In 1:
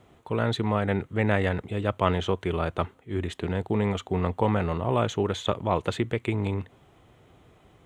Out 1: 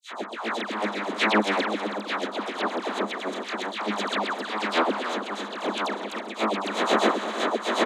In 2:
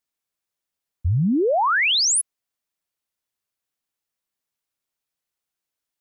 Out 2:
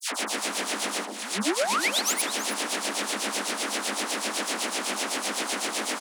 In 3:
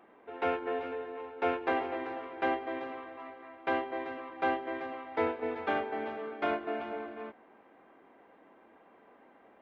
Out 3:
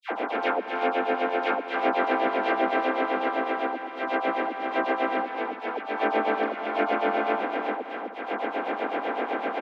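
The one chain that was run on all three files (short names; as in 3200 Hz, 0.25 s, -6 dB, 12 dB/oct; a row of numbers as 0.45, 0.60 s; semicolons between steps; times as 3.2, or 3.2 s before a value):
per-bin compression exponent 0.2; added harmonics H 6 -15 dB, 7 -20 dB, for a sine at 10.5 dBFS; reverse; compressor 20:1, threshold -20 dBFS; reverse; harmonic tremolo 7.9 Hz, depth 100%, crossover 900 Hz; auto swell 0.293 s; rippled Chebyshev high-pass 200 Hz, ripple 3 dB; dispersion lows, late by 0.112 s, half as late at 1400 Hz; on a send: echo 0.322 s -11.5 dB; on the sum: match loudness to -27 LUFS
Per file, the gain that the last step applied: +19.5, +7.0, +18.0 dB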